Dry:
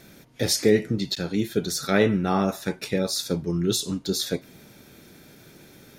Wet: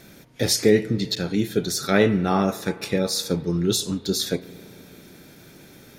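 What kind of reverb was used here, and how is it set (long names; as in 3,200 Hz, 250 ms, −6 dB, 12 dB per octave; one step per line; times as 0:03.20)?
spring reverb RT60 3.5 s, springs 34 ms, chirp 60 ms, DRR 17 dB
level +2 dB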